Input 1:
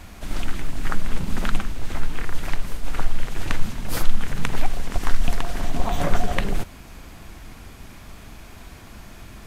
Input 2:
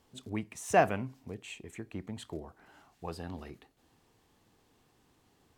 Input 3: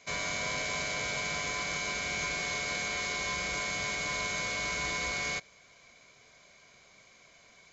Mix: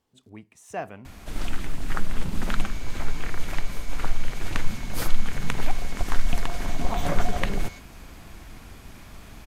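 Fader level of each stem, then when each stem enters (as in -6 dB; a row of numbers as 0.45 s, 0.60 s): -2.5 dB, -8.5 dB, -13.0 dB; 1.05 s, 0.00 s, 2.40 s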